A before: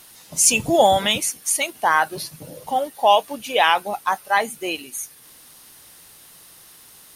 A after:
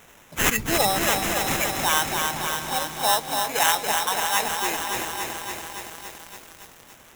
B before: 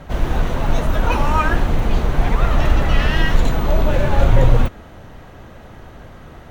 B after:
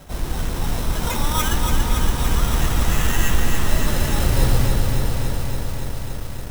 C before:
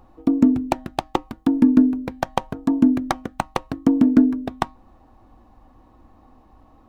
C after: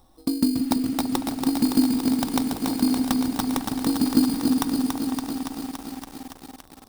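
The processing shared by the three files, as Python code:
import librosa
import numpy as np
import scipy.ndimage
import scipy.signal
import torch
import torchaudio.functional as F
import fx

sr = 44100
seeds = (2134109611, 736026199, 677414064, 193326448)

p1 = fx.sample_hold(x, sr, seeds[0], rate_hz=4600.0, jitter_pct=0)
p2 = fx.high_shelf(p1, sr, hz=5200.0, db=8.5)
p3 = p2 + fx.echo_opening(p2, sr, ms=167, hz=200, octaves=2, feedback_pct=70, wet_db=-6, dry=0)
p4 = fx.dynamic_eq(p3, sr, hz=610.0, q=3.0, threshold_db=-35.0, ratio=4.0, max_db=-6)
p5 = fx.echo_crushed(p4, sr, ms=283, feedback_pct=80, bits=6, wet_db=-4.5)
y = p5 * librosa.db_to_amplitude(-6.5)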